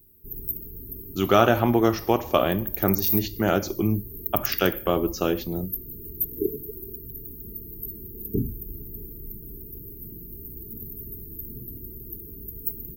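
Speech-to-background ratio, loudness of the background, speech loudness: 8.5 dB, −32.5 LKFS, −24.0 LKFS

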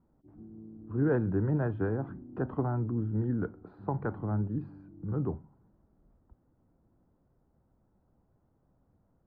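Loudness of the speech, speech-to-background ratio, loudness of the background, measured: −32.5 LKFS, 18.5 dB, −51.0 LKFS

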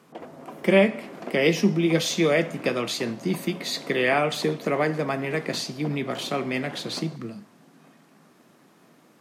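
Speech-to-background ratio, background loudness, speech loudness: 17.0 dB, −42.0 LKFS, −25.0 LKFS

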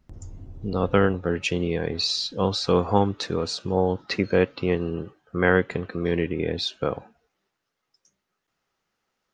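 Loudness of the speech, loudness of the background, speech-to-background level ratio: −24.5 LKFS, −44.5 LKFS, 20.0 dB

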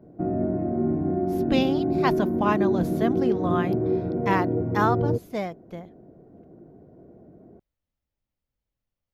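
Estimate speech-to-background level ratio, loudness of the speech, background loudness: −2.5 dB, −28.0 LKFS, −25.5 LKFS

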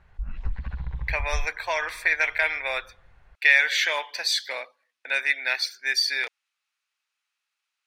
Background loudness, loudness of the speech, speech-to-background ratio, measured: −35.5 LKFS, −24.0 LKFS, 11.5 dB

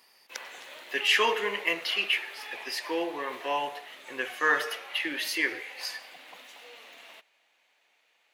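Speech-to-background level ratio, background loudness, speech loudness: 15.0 dB, −43.5 LKFS, −28.5 LKFS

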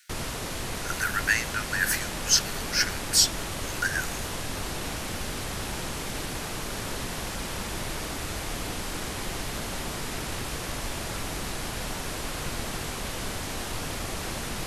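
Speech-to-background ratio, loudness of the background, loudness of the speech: 7.5 dB, −33.0 LKFS, −25.5 LKFS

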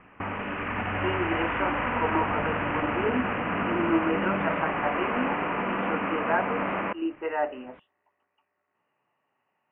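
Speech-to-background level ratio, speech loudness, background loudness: −3.0 dB, −31.5 LKFS, −28.5 LKFS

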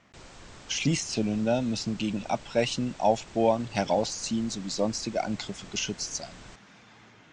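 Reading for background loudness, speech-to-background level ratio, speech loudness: −48.5 LKFS, 19.5 dB, −29.0 LKFS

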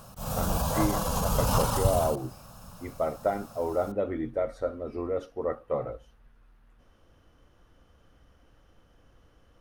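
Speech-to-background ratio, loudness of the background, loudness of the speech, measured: −3.5 dB, −28.5 LKFS, −32.0 LKFS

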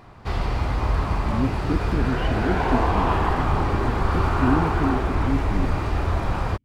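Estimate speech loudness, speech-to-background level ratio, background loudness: −29.0 LKFS, −5.0 dB, −24.0 LKFS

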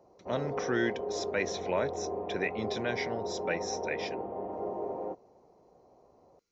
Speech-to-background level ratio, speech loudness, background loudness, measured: 2.0 dB, −35.0 LKFS, −37.0 LKFS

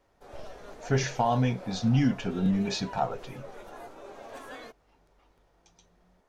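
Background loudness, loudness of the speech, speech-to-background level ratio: −45.5 LKFS, −28.0 LKFS, 17.5 dB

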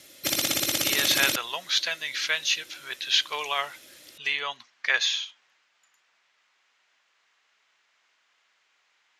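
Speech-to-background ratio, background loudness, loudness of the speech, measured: −1.5 dB, −25.0 LKFS, −26.5 LKFS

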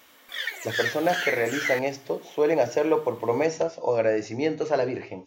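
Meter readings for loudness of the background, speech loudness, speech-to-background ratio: −29.0 LKFS, −26.0 LKFS, 3.0 dB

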